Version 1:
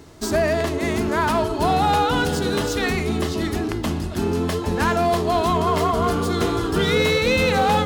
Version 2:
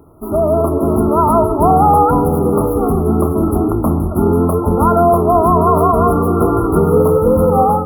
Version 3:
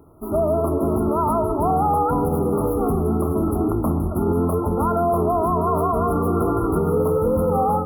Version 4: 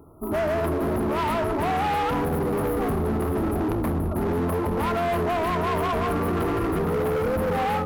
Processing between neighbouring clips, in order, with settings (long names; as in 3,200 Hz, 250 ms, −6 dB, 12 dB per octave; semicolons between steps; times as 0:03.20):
brick-wall band-stop 1,400–10,000 Hz; automatic gain control gain up to 12 dB
brickwall limiter −7 dBFS, peak gain reduction 5 dB; level −5 dB
gain into a clipping stage and back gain 22 dB